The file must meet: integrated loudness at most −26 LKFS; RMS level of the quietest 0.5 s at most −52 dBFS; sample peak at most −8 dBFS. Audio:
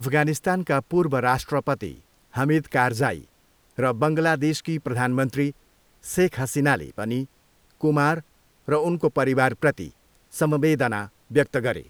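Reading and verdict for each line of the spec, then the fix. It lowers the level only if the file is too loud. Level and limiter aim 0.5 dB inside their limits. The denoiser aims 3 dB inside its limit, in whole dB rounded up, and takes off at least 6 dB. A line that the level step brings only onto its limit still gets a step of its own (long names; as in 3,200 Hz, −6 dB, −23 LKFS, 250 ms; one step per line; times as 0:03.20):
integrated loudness −23.5 LKFS: out of spec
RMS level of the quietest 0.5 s −60 dBFS: in spec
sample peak −5.0 dBFS: out of spec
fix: level −3 dB
brickwall limiter −8.5 dBFS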